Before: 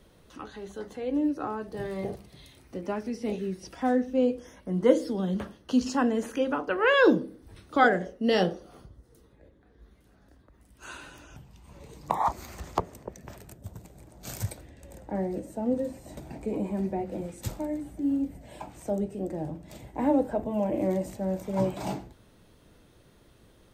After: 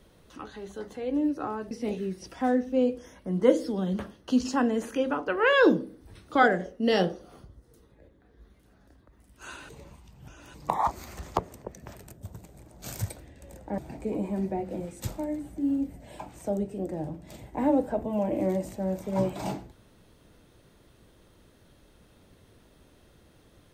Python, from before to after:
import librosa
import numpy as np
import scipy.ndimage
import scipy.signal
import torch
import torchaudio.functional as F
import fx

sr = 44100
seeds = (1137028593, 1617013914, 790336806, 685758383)

y = fx.edit(x, sr, fx.cut(start_s=1.71, length_s=1.41),
    fx.reverse_span(start_s=11.1, length_s=0.85),
    fx.cut(start_s=15.19, length_s=1.0), tone=tone)